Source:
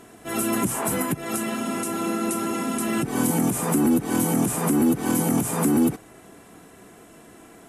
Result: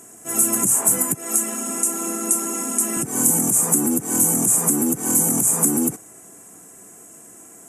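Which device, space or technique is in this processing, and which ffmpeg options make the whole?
budget condenser microphone: -filter_complex "[0:a]highpass=99,highshelf=f=5.4k:t=q:w=3:g=11,asettb=1/sr,asplit=3[a][b][c];[a]atrim=end=1.154[d];[b]atrim=start=1.15:end=2.97,asetpts=PTS-STARTPTS,afade=t=in:d=0.004:c=qsin,afade=t=out:st=1.816:d=0.004:c=qsin,highpass=f=200:w=0.5412,highpass=f=200:w=1.3066[e];[c]atrim=start=2.966[f];[d][e]acrossfade=d=0.004:c1=hsin:c2=qsin[g];[g][f]acrossfade=d=0.004:c1=qsin:c2=hsin,volume=-2.5dB"

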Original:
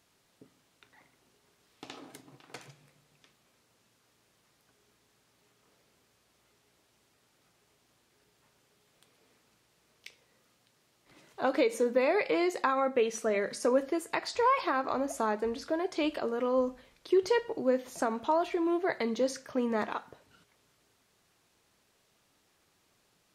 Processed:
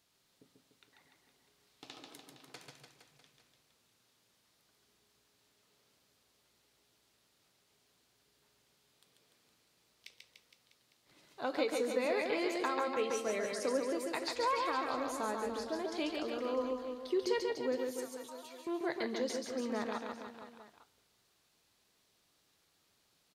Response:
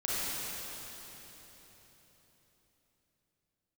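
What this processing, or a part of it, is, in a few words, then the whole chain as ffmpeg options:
presence and air boost: -filter_complex "[0:a]asettb=1/sr,asplit=3[a][b][c];[a]atrim=end=17.904[d];[b]atrim=start=17.9:end=18.67,asetpts=PTS-STARTPTS,afade=t=in:d=0.004:c=qsin,afade=t=out:st=0.766:d=0.004:c=qsin,aderivative[e];[c]atrim=start=18.666[f];[d][e]acrossfade=d=0.004:c1=hsin:c2=qsin[g];[g][f]acrossfade=d=0.004:c1=qsin:c2=hsin,equalizer=f=4.1k:t=o:w=0.97:g=5.5,highshelf=f=9.9k:g=6.5,aecho=1:1:140|294|463.4|649.7|854.7:0.631|0.398|0.251|0.158|0.1,volume=-8dB"

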